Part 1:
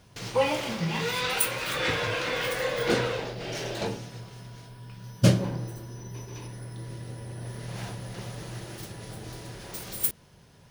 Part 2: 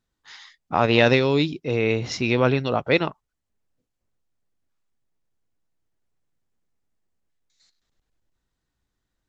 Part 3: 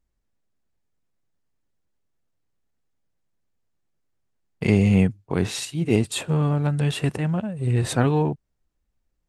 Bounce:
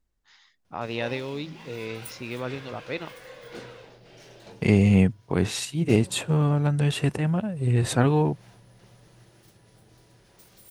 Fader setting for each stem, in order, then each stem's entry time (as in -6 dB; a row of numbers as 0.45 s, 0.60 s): -16.0 dB, -13.0 dB, -0.5 dB; 0.65 s, 0.00 s, 0.00 s